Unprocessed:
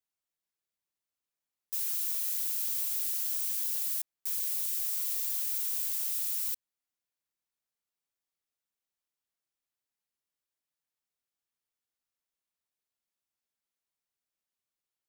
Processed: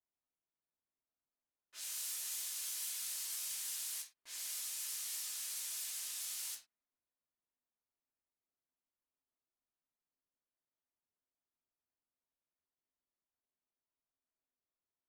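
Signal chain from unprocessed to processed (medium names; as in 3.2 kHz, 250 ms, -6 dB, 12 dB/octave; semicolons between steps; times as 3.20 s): gated-style reverb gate 130 ms falling, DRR 0.5 dB; level-controlled noise filter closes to 1.1 kHz, open at -23.5 dBFS; trim -3 dB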